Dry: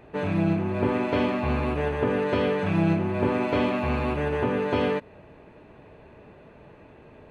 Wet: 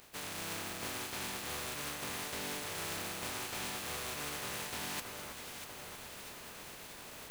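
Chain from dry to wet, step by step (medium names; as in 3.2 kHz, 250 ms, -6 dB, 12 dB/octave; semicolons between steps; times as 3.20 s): spectral contrast reduction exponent 0.19; reverse; compression 6:1, threshold -39 dBFS, peak gain reduction 18.5 dB; reverse; echo whose repeats swap between lows and highs 321 ms, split 1.8 kHz, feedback 75%, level -6 dB; trim -1 dB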